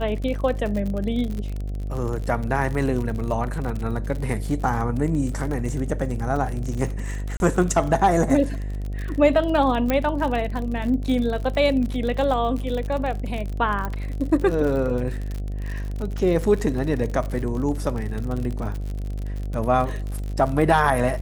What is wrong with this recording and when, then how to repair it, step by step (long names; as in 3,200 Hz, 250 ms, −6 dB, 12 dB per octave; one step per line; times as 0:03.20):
mains buzz 50 Hz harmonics 15 −28 dBFS
surface crackle 53 per second −28 dBFS
0:07.37–0:07.40: drop-out 31 ms
0:09.90: click −8 dBFS
0:13.85: click −15 dBFS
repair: click removal
hum removal 50 Hz, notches 15
repair the gap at 0:07.37, 31 ms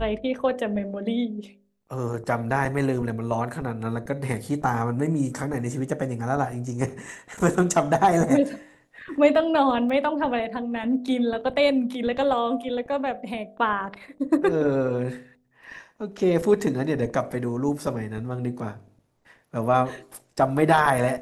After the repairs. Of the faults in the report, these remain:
0:09.90: click